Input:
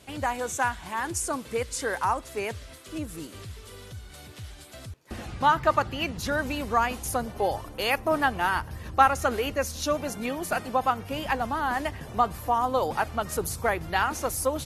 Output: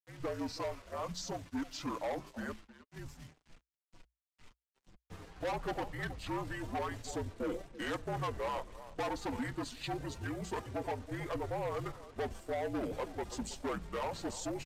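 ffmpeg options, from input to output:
ffmpeg -i in.wav -filter_complex "[0:a]bandreject=frequency=50:width_type=h:width=6,bandreject=frequency=100:width_type=h:width=6,bandreject=frequency=150:width_type=h:width=6,bandreject=frequency=200:width_type=h:width=6,bandreject=frequency=250:width_type=h:width=6,bandreject=frequency=300:width_type=h:width=6,bandreject=frequency=350:width_type=h:width=6,bandreject=frequency=400:width_type=h:width=6,agate=range=-33dB:threshold=-33dB:ratio=3:detection=peak,highshelf=frequency=6500:gain=-7,asplit=2[link_01][link_02];[link_02]adelay=320,highpass=300,lowpass=3400,asoftclip=type=hard:threshold=-15.5dB,volume=-19dB[link_03];[link_01][link_03]amix=inputs=2:normalize=0,acrusher=bits=7:mix=0:aa=0.5,flanger=delay=3.3:depth=3.2:regen=-34:speed=0.26:shape=triangular,volume=29dB,asoftclip=hard,volume=-29dB,asetrate=30296,aresample=44100,atempo=1.45565,afreqshift=-60,volume=-3.5dB" out.wav

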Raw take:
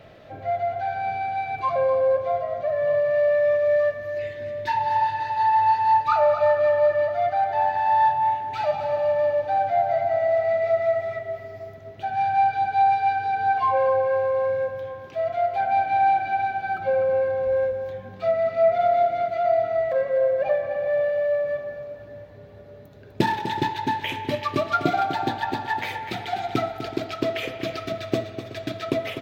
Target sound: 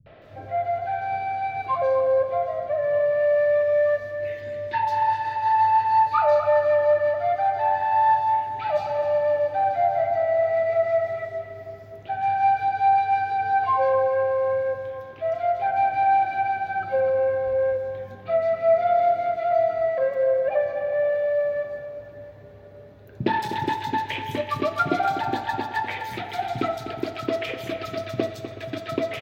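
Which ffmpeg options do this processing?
ffmpeg -i in.wav -filter_complex "[0:a]acrossover=split=180|4000[link_01][link_02][link_03];[link_02]adelay=60[link_04];[link_03]adelay=220[link_05];[link_01][link_04][link_05]amix=inputs=3:normalize=0" out.wav

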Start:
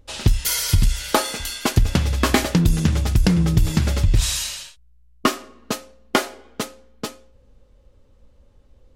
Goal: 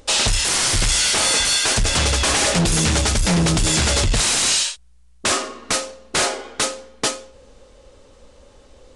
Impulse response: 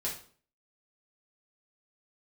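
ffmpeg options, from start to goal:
-af "bass=frequency=250:gain=-13,treble=frequency=4000:gain=5,alimiter=limit=-13.5dB:level=0:latency=1:release=18,aeval=exprs='0.211*sin(PI/2*3.55*val(0)/0.211)':channel_layout=same,aresample=22050,aresample=44100"

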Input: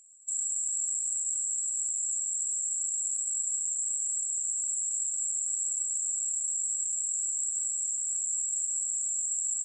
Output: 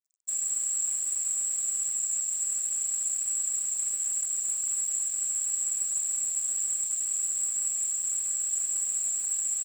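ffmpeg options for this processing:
ffmpeg -i in.wav -af "aecho=1:1:5.2:0.76,acrusher=bits=6:mix=0:aa=0.5" out.wav

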